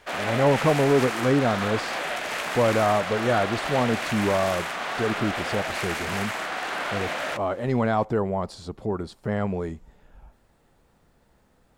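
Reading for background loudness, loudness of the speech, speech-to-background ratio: −29.0 LKFS, −25.5 LKFS, 3.5 dB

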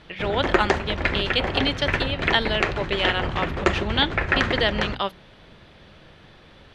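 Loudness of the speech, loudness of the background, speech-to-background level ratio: −25.5 LKFS, −25.5 LKFS, 0.0 dB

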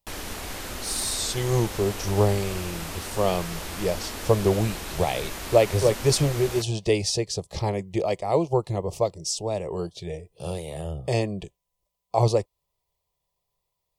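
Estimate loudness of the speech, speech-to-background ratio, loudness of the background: −26.0 LKFS, 8.5 dB, −34.5 LKFS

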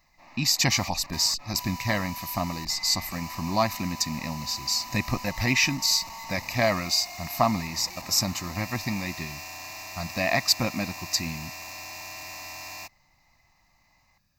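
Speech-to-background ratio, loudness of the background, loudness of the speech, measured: 12.5 dB, −38.5 LKFS, −26.0 LKFS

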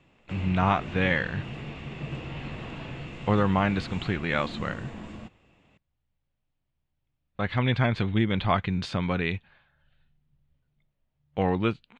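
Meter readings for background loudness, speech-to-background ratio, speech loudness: −38.5 LKFS, 11.5 dB, −27.0 LKFS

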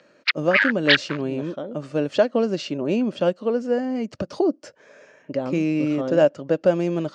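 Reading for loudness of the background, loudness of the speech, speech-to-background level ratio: −20.5 LKFS, −23.5 LKFS, −3.0 dB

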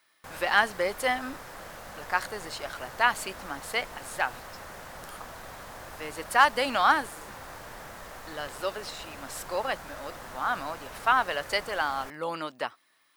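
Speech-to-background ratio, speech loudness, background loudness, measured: 14.5 dB, −28.5 LKFS, −43.0 LKFS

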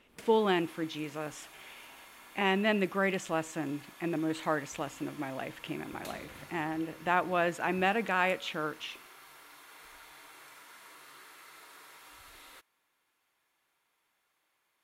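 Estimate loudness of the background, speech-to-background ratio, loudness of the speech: −51.5 LKFS, 19.5 dB, −32.0 LKFS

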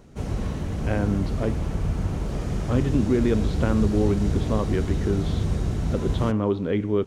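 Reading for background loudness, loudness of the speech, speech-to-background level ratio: −28.0 LKFS, −25.5 LKFS, 2.5 dB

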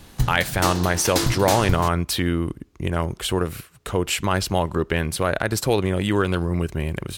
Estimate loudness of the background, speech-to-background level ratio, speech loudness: −26.0 LKFS, 3.0 dB, −23.0 LKFS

